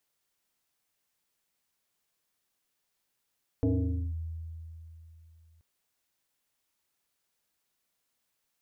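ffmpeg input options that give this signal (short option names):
-f lavfi -i "aevalsrc='0.0794*pow(10,-3*t/3.19)*sin(2*PI*81.5*t+1.9*clip(1-t/0.51,0,1)*sin(2*PI*2.31*81.5*t))':d=1.98:s=44100"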